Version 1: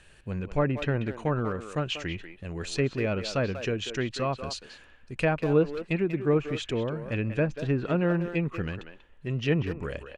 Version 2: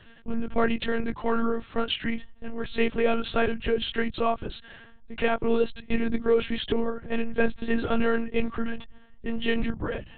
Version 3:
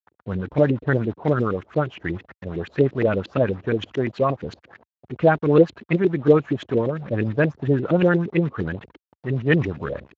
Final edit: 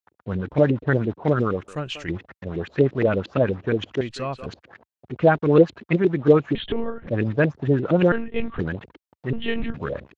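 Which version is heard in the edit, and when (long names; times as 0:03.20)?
3
0:01.68–0:02.08: punch in from 1
0:04.01–0:04.46: punch in from 1
0:06.55–0:07.07: punch in from 2
0:08.12–0:08.59: punch in from 2
0:09.33–0:09.74: punch in from 2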